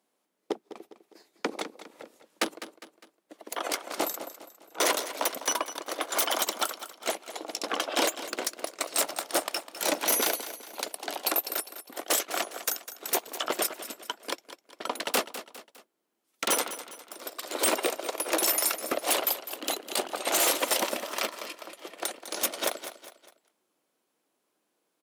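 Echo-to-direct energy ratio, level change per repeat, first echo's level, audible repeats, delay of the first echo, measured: -12.0 dB, -7.0 dB, -13.0 dB, 3, 0.203 s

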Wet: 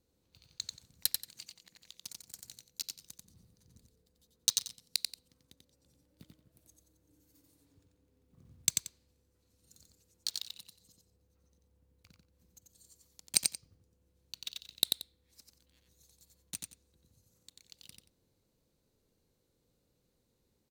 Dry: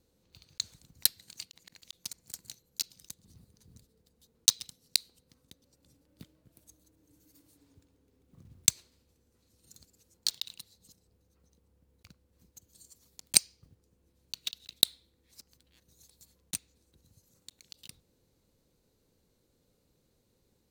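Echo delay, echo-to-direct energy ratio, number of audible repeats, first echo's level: 90 ms, -3.5 dB, 2, -3.5 dB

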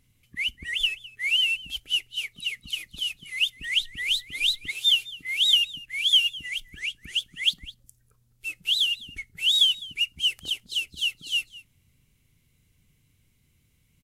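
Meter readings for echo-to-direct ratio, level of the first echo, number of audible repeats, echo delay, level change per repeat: -19.5 dB, -19.5 dB, 1, 0.207 s, no steady repeat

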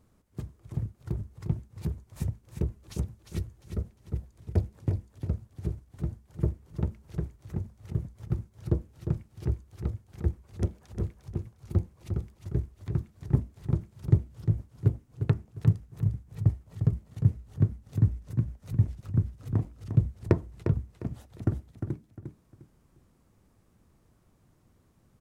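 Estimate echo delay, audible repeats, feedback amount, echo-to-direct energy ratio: 0.353 s, 3, 27%, -7.5 dB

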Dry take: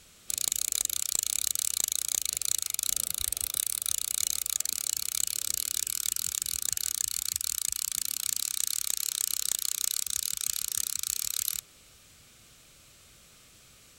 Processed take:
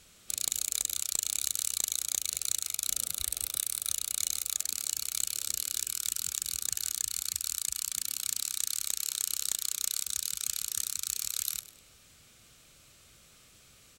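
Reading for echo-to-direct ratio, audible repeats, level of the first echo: -15.5 dB, 2, -16.0 dB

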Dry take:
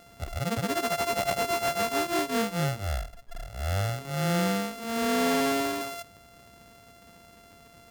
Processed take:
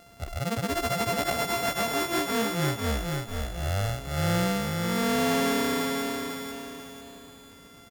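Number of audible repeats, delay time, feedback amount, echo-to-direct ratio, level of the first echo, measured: 5, 0.494 s, 42%, -2.5 dB, -3.5 dB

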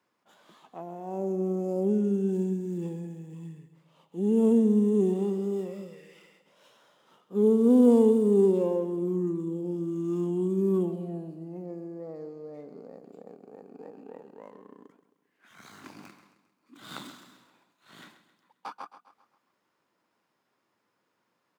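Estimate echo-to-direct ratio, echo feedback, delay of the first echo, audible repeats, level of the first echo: -11.5 dB, 47%, 0.133 s, 4, -12.5 dB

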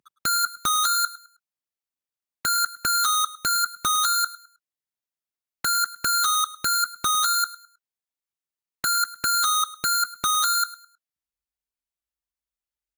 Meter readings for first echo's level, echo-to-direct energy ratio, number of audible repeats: -18.0 dB, -17.5 dB, 2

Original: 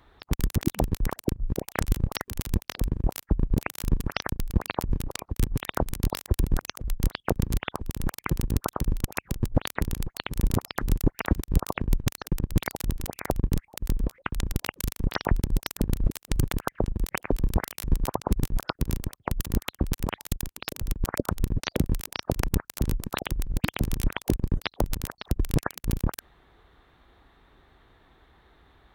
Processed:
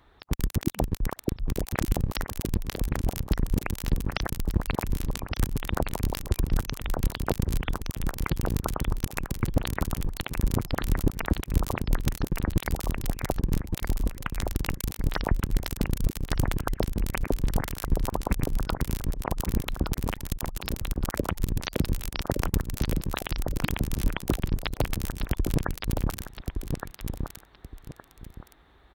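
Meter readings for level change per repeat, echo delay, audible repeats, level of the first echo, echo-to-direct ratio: -11.5 dB, 1.167 s, 2, -5.0 dB, -4.5 dB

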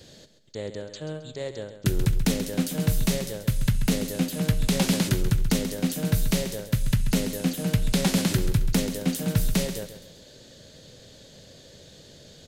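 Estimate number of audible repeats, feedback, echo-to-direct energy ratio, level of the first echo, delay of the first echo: 3, 36%, -10.5 dB, -11.0 dB, 0.134 s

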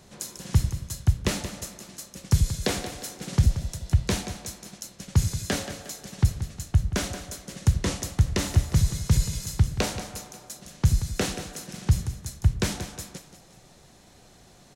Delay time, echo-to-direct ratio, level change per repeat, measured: 0.179 s, -10.5 dB, -6.5 dB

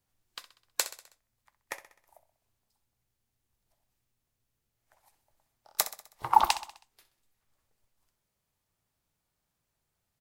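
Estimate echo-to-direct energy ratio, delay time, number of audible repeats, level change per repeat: -12.5 dB, 64 ms, 4, -5.5 dB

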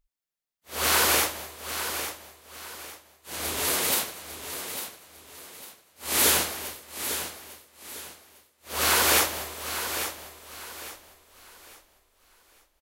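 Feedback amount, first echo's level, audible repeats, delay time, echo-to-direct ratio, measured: 32%, -9.5 dB, 3, 0.851 s, -9.0 dB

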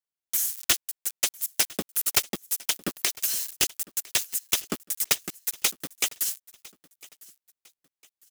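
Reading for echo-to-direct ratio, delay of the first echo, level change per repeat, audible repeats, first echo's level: -22.0 dB, 1.004 s, -9.5 dB, 2, -22.5 dB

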